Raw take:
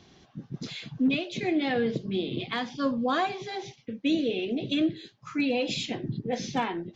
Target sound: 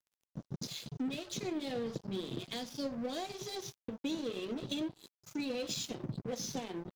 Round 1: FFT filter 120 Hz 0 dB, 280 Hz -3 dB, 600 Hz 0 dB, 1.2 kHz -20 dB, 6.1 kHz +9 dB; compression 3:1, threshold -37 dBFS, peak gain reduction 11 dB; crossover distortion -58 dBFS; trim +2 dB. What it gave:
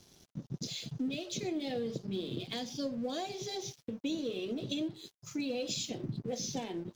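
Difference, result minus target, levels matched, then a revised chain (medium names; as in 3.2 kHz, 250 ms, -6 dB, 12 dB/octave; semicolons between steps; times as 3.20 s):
crossover distortion: distortion -10 dB
FFT filter 120 Hz 0 dB, 280 Hz -3 dB, 600 Hz 0 dB, 1.2 kHz -20 dB, 6.1 kHz +9 dB; compression 3:1, threshold -37 dBFS, peak gain reduction 11 dB; crossover distortion -47 dBFS; trim +2 dB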